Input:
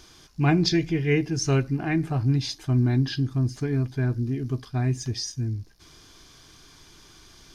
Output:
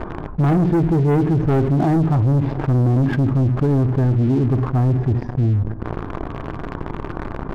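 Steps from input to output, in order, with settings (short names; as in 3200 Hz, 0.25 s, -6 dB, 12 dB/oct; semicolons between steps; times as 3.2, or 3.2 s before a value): LPF 1100 Hz 24 dB/oct; reverb, pre-delay 3 ms, DRR 14 dB; sample leveller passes 3; fast leveller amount 70%; gain -1.5 dB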